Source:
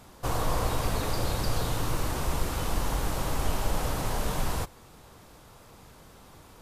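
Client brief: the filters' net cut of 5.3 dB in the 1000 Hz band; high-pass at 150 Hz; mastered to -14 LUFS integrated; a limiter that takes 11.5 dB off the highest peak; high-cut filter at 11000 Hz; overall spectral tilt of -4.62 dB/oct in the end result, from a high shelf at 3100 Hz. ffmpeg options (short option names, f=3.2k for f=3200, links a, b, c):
-af "highpass=150,lowpass=11k,equalizer=f=1k:t=o:g=-6,highshelf=f=3.1k:g=-6.5,volume=28.5dB,alimiter=limit=-5dB:level=0:latency=1"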